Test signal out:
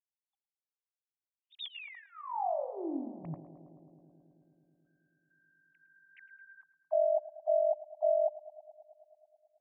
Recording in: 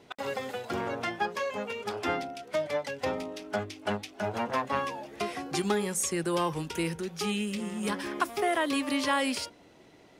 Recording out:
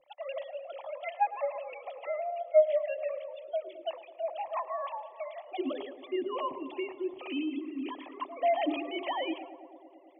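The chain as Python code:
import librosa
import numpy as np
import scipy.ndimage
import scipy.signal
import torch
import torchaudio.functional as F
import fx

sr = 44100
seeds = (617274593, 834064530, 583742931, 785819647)

p1 = fx.sine_speech(x, sr)
p2 = fx.fixed_phaser(p1, sr, hz=300.0, stages=8)
p3 = p2 + fx.echo_filtered(p2, sr, ms=108, feedback_pct=84, hz=1600.0, wet_db=-14, dry=0)
p4 = fx.dynamic_eq(p3, sr, hz=230.0, q=1.2, threshold_db=-44.0, ratio=4.0, max_db=3)
y = fx.hum_notches(p4, sr, base_hz=60, count=10)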